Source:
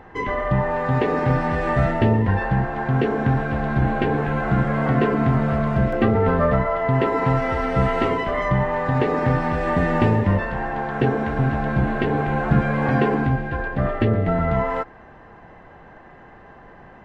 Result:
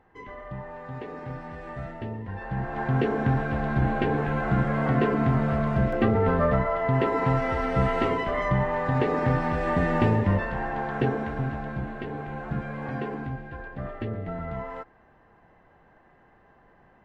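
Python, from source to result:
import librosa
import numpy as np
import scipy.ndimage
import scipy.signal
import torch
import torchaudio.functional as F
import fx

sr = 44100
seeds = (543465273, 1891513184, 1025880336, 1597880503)

y = fx.gain(x, sr, db=fx.line((2.27, -17.0), (2.8, -4.0), (10.92, -4.0), (11.94, -13.0)))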